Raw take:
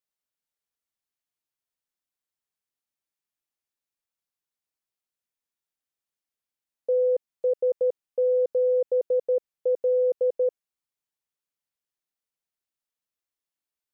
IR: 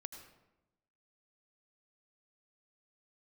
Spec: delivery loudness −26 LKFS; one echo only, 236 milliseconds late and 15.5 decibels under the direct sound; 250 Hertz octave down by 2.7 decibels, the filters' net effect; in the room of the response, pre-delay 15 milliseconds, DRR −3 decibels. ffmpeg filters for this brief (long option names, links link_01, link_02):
-filter_complex "[0:a]equalizer=frequency=250:width_type=o:gain=-6,aecho=1:1:236:0.168,asplit=2[link_01][link_02];[1:a]atrim=start_sample=2205,adelay=15[link_03];[link_02][link_03]afir=irnorm=-1:irlink=0,volume=7dB[link_04];[link_01][link_04]amix=inputs=2:normalize=0,volume=-0.5dB"